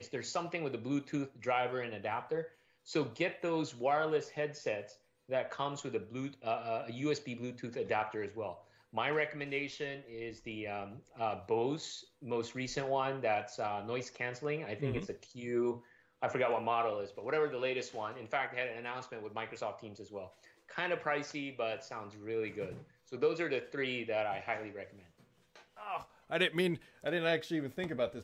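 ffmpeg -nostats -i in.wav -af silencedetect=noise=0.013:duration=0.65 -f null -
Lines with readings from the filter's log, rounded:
silence_start: 24.83
silence_end: 25.82 | silence_duration: 0.99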